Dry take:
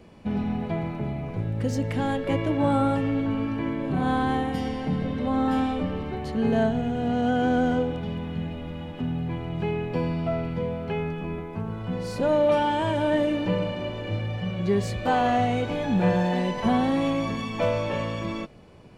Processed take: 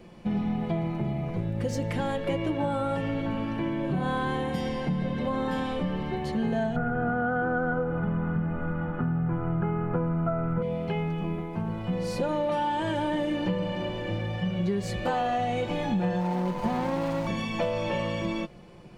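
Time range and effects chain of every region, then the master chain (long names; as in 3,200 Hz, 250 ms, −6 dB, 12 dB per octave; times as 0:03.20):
0:06.76–0:10.62: low-pass with resonance 1,400 Hz, resonance Q 13 + spectral tilt −1.5 dB per octave
0:16.20–0:17.27: running median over 41 samples + parametric band 940 Hz +15 dB 0.24 octaves
whole clip: comb filter 5.7 ms, depth 54%; downward compressor, threshold −24 dBFS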